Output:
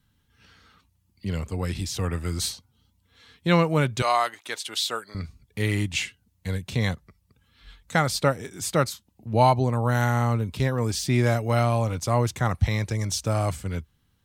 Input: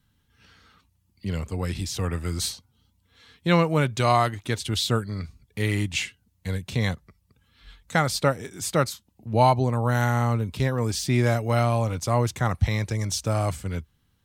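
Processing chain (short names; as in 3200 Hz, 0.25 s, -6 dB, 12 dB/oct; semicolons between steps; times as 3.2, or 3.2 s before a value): 4.02–5.15 HPF 620 Hz 12 dB/oct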